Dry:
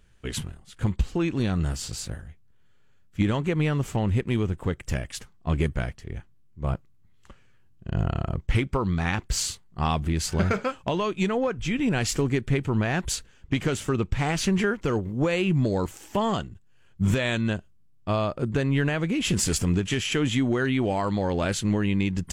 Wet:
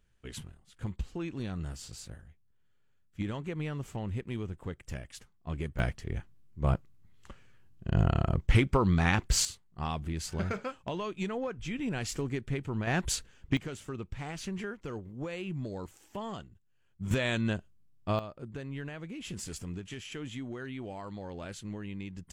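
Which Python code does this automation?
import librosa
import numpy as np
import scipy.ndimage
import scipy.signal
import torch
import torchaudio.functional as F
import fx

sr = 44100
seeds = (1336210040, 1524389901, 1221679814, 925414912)

y = fx.gain(x, sr, db=fx.steps((0.0, -11.5), (5.79, 0.0), (9.45, -9.5), (12.87, -3.0), (13.57, -14.0), (17.11, -4.5), (18.19, -16.0)))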